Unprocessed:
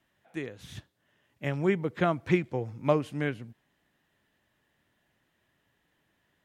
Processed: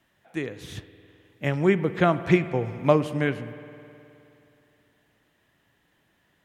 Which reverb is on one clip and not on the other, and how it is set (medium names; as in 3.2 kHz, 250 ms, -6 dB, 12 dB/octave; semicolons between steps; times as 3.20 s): spring tank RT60 2.9 s, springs 52 ms, chirp 75 ms, DRR 13 dB; trim +5.5 dB